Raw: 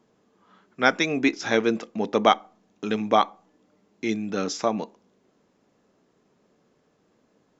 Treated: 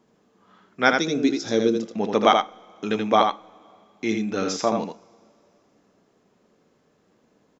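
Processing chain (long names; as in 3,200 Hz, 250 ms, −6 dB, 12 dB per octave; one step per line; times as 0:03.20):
0:00.99–0:01.85: flat-topped bell 1,400 Hz −12 dB 2.3 octaves
single-tap delay 81 ms −5 dB
coupled-rooms reverb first 0.27 s, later 3 s, from −20 dB, DRR 16.5 dB
level +1 dB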